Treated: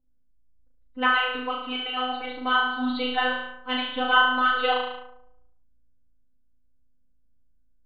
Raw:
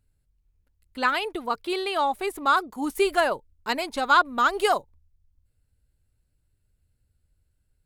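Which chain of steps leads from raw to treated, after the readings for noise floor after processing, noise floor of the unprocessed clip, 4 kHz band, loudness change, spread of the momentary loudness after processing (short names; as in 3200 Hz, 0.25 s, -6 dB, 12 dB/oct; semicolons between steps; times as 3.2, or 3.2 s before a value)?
-60 dBFS, -72 dBFS, +5.0 dB, 0.0 dB, 10 LU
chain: nonlinear frequency compression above 2800 Hz 4:1; robotiser 253 Hz; on a send: flutter echo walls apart 6.2 m, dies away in 0.87 s; on the sum: low-pass opened by the level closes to 560 Hz, open at -22 dBFS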